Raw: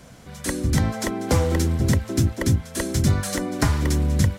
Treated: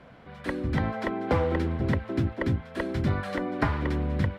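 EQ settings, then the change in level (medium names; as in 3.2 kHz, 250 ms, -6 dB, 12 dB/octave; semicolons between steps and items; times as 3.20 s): distance through air 450 m; bass shelf 280 Hz -11 dB; +2.0 dB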